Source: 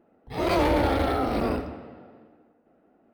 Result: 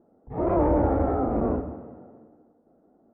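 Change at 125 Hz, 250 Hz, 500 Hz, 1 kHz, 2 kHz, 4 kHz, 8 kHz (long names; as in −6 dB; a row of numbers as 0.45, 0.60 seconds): +2.0 dB, +1.5 dB, +1.0 dB, −1.5 dB, −13.5 dB, below −30 dB, below −30 dB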